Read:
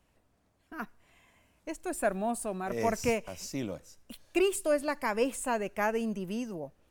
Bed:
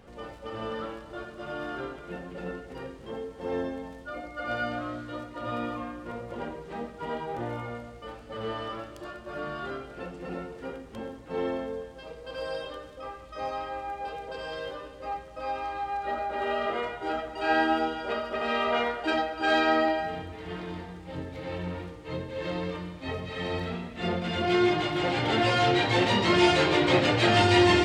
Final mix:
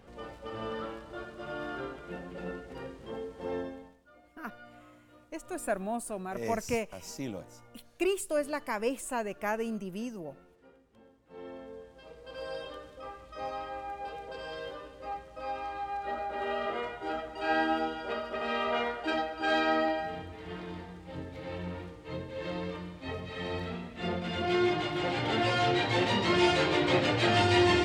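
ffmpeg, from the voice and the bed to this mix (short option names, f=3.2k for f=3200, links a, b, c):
-filter_complex "[0:a]adelay=3650,volume=-2.5dB[a];[1:a]volume=14.5dB,afade=t=out:st=3.43:d=0.56:silence=0.11885,afade=t=in:st=11.2:d=1.47:silence=0.141254[b];[a][b]amix=inputs=2:normalize=0"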